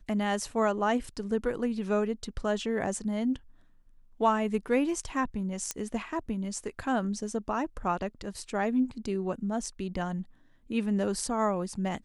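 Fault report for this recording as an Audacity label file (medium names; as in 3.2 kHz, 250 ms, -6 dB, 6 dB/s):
5.710000	5.710000	pop -15 dBFS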